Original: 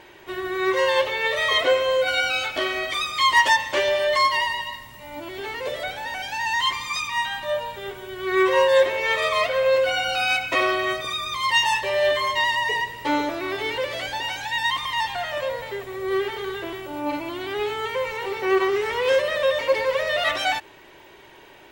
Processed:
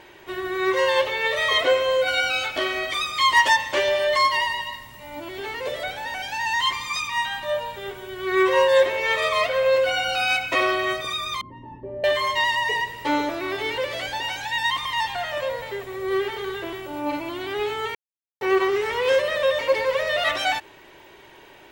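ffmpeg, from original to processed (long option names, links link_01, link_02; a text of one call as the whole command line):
ffmpeg -i in.wav -filter_complex "[0:a]asettb=1/sr,asplit=3[link_01][link_02][link_03];[link_01]atrim=end=11.414[link_04];[link_02]atrim=start=11.41:end=12.04,asetpts=PTS-STARTPTS,afade=type=in:duration=0.004:curve=qsin,afade=type=out:start_time=0.626:duration=0.004:curve=qsin,lowpass=frequency=280:width_type=q:width=3.3[link_05];[link_03]atrim=start=12.036[link_06];[link_04][link_05]acrossfade=duration=0.004:curve1=hsin:curve2=qsin[link_07];[link_07][link_06]acrossfade=duration=0.004:curve1=qsin:curve2=hsin,asplit=3[link_08][link_09][link_10];[link_08]atrim=end=17.95,asetpts=PTS-STARTPTS,afade=type=out:start_time=17.946:duration=0.004:curve=hsin[link_11];[link_09]atrim=start=17.95:end=18.41,asetpts=PTS-STARTPTS,volume=0[link_12];[link_10]atrim=start=18.41,asetpts=PTS-STARTPTS,afade=type=in:duration=0.004:curve=hsin[link_13];[link_11][link_12][link_13]concat=n=3:v=0:a=1" out.wav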